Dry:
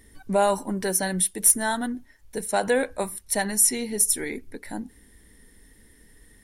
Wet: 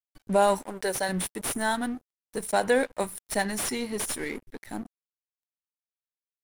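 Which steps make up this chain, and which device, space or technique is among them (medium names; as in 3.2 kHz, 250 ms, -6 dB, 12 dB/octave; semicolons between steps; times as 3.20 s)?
0.62–1.09 s: resonant low shelf 350 Hz -8 dB, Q 1.5; early transistor amplifier (crossover distortion -41.5 dBFS; slew-rate limiter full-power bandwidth 270 Hz)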